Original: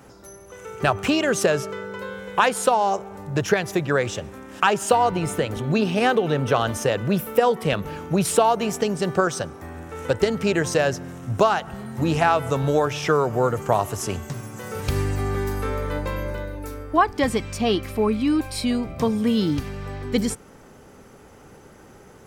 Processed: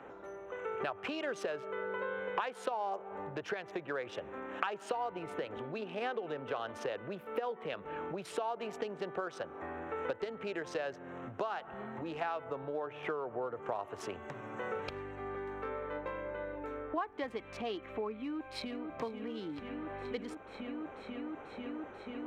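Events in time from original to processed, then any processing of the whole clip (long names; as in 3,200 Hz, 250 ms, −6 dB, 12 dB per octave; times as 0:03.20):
0:12.44–0:13.63: high-shelf EQ 2,500 Hz −9.5 dB
0:18.14–0:18.95: delay throw 490 ms, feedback 85%, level −7 dB
whole clip: adaptive Wiener filter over 9 samples; downward compressor 10 to 1, threshold −33 dBFS; three-way crossover with the lows and the highs turned down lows −17 dB, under 300 Hz, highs −18 dB, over 4,500 Hz; level +1 dB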